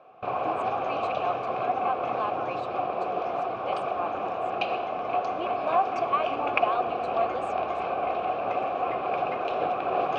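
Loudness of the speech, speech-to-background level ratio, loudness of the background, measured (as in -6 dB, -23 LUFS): -32.5 LUFS, -3.0 dB, -29.5 LUFS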